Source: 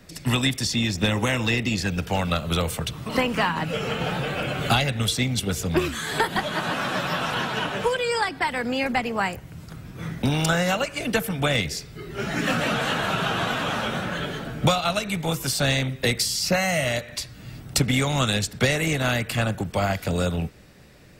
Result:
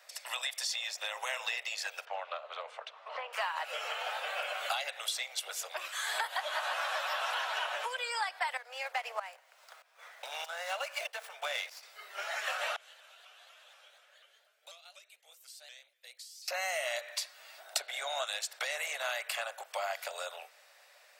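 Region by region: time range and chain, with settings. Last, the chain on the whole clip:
0:02.05–0:03.33: head-to-tape spacing loss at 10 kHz 33 dB + highs frequency-modulated by the lows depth 0.16 ms
0:08.57–0:11.83: shaped tremolo saw up 1.6 Hz, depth 85% + windowed peak hold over 3 samples
0:12.76–0:16.48: guitar amp tone stack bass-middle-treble 10-0-1 + pitch modulation by a square or saw wave saw up 4.1 Hz, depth 160 cents
0:17.58–0:18.24: hum removal 171.6 Hz, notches 27 + hollow resonant body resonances 340/650/1,500/3,700 Hz, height 10 dB, ringing for 20 ms
whole clip: downward compressor, threshold −25 dBFS; Butterworth high-pass 580 Hz 48 dB per octave; level −4 dB

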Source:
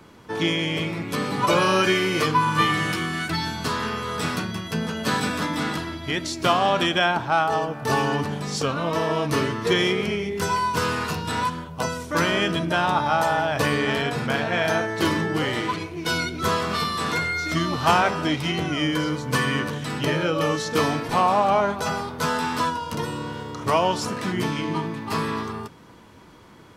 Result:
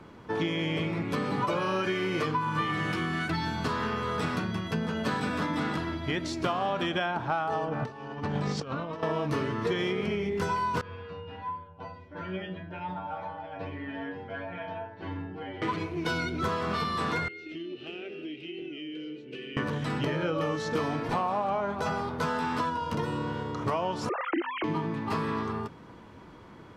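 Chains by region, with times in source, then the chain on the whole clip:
0:07.68–0:09.03: low-pass filter 6,400 Hz + compressor whose output falls as the input rises −30 dBFS, ratio −0.5
0:10.81–0:15.62: Butterworth band-reject 1,200 Hz, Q 7 + high-frequency loss of the air 300 metres + stiff-string resonator 92 Hz, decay 0.54 s, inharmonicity 0.002
0:17.28–0:19.57: pair of resonant band-passes 1,000 Hz, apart 2.9 octaves + downward compressor 3 to 1, threshold −35 dBFS
0:24.09–0:24.64: three sine waves on the formant tracks + band-pass filter 200–2,800 Hz + hum removal 256.8 Hz, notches 3
whole clip: low-pass filter 2,100 Hz 6 dB per octave; downward compressor, threshold −26 dBFS

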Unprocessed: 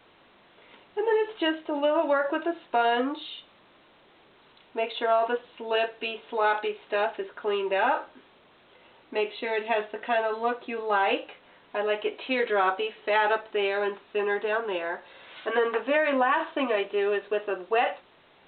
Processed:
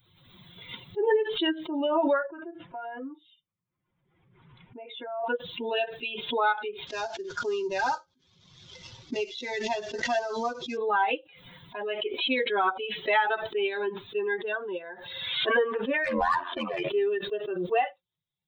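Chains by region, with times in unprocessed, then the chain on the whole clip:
0:02.26–0:05.24: low-pass filter 2,600 Hz 24 dB per octave + downward compressor 2 to 1, threshold −33 dBFS
0:06.87–0:10.77: variable-slope delta modulation 32 kbit/s + single-tap delay 70 ms −19.5 dB
0:16.04–0:16.89: mid-hump overdrive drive 14 dB, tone 2,600 Hz, clips at −13.5 dBFS + ring modulation 43 Hz
whole clip: spectral dynamics exaggerated over time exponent 2; notch filter 610 Hz, Q 12; background raised ahead of every attack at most 42 dB per second; level +2.5 dB

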